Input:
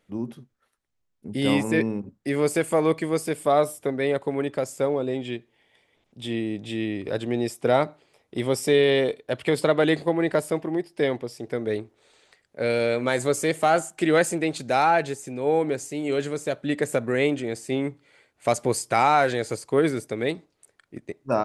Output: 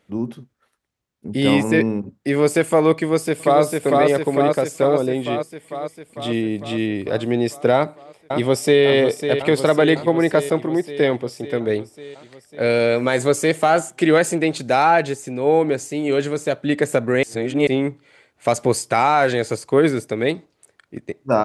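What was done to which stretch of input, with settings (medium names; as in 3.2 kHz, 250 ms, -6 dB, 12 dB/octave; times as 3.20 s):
2.94–3.62 s: echo throw 450 ms, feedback 70%, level -2.5 dB
7.75–8.84 s: echo throw 550 ms, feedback 70%, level -8.5 dB
17.23–17.67 s: reverse
whole clip: high-pass 46 Hz; treble shelf 8.3 kHz -5 dB; loudness maximiser +9.5 dB; trim -3.5 dB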